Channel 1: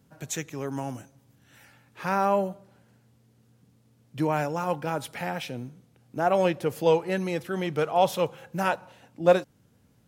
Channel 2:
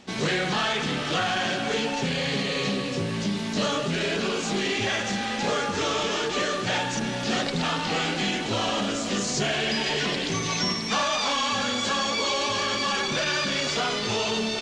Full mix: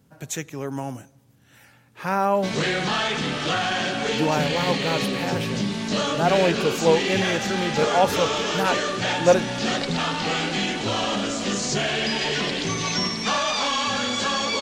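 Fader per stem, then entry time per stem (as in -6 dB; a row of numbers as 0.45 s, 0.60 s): +2.5 dB, +1.5 dB; 0.00 s, 2.35 s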